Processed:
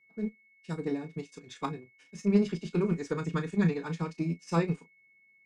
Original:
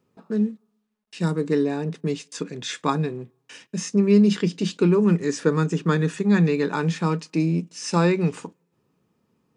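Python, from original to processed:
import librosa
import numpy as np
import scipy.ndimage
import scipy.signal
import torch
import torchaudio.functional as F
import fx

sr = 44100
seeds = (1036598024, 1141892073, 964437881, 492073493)

y = x + 10.0 ** (-46.0 / 20.0) * np.sin(2.0 * np.pi * 2200.0 * np.arange(len(x)) / sr)
y = fx.harmonic_tremolo(y, sr, hz=9.2, depth_pct=50, crossover_hz=450.0)
y = fx.cheby_harmonics(y, sr, harmonics=(2, 4, 6), levels_db=(-14, -23, -28), full_scale_db=-8.5)
y = fx.room_early_taps(y, sr, ms=(36, 60), db=(-11.5, -10.0))
y = fx.stretch_vocoder(y, sr, factor=0.57)
y = fx.upward_expand(y, sr, threshold_db=-38.0, expansion=1.5)
y = y * librosa.db_to_amplitude(-4.0)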